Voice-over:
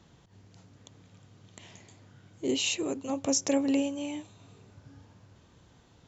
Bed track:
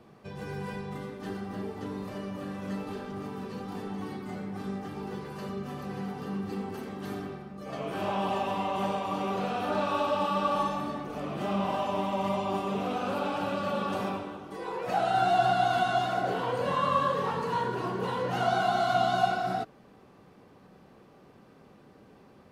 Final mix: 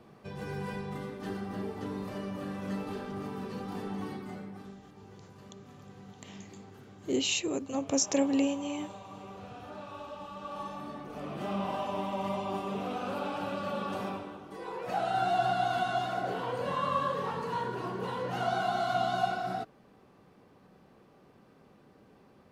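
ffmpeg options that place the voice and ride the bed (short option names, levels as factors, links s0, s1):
-filter_complex "[0:a]adelay=4650,volume=0.944[s0];[1:a]volume=3.55,afade=t=out:st=4.02:d=0.76:silence=0.177828,afade=t=in:st=10.39:d=0.91:silence=0.266073[s1];[s0][s1]amix=inputs=2:normalize=0"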